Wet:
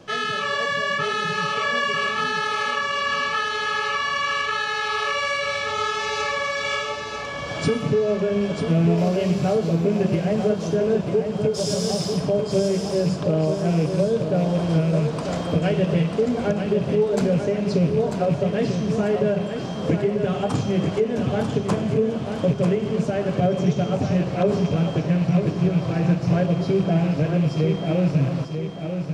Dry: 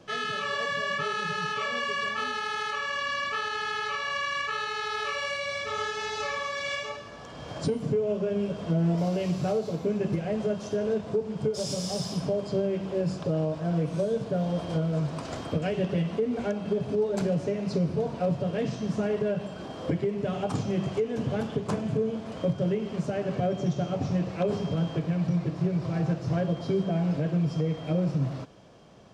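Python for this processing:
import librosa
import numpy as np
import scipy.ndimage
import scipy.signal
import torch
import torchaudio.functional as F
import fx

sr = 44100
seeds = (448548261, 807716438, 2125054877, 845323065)

p1 = fx.rattle_buzz(x, sr, strikes_db=-27.0, level_db=-38.0)
p2 = p1 + fx.echo_feedback(p1, sr, ms=943, feedback_pct=41, wet_db=-7.0, dry=0)
y = F.gain(torch.from_numpy(p2), 6.0).numpy()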